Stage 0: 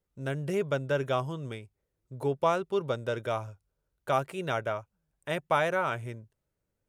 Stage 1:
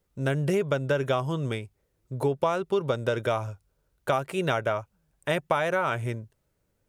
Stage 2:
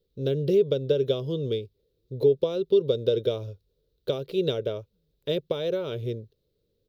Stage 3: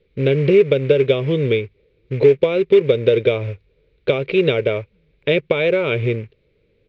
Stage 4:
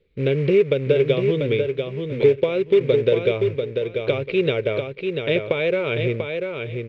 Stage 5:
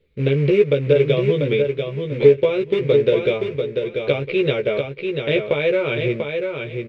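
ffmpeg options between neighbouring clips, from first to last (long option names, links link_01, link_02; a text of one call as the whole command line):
ffmpeg -i in.wav -af "acompressor=threshold=-30dB:ratio=6,volume=8.5dB" out.wav
ffmpeg -i in.wav -filter_complex "[0:a]firequalizer=gain_entry='entry(280,0);entry(450,11);entry(740,-16);entry(1900,-16);entry(3800,10);entry(8100,-19);entry(13000,4)':delay=0.05:min_phase=1,acrossover=split=6600[link_01][link_02];[link_02]aeval=exprs='max(val(0),0)':channel_layout=same[link_03];[link_01][link_03]amix=inputs=2:normalize=0,volume=-2dB" out.wav
ffmpeg -i in.wav -filter_complex "[0:a]asplit=2[link_01][link_02];[link_02]acompressor=threshold=-30dB:ratio=8,volume=1dB[link_03];[link_01][link_03]amix=inputs=2:normalize=0,acrusher=bits=6:mode=log:mix=0:aa=0.000001,lowpass=frequency=2300:width_type=q:width=7.3,volume=6dB" out.wav
ffmpeg -i in.wav -af "aecho=1:1:691|1382|2073:0.531|0.111|0.0234,volume=-4dB" out.wav
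ffmpeg -i in.wav -filter_complex "[0:a]asplit=2[link_01][link_02];[link_02]adelay=14,volume=-3dB[link_03];[link_01][link_03]amix=inputs=2:normalize=0" out.wav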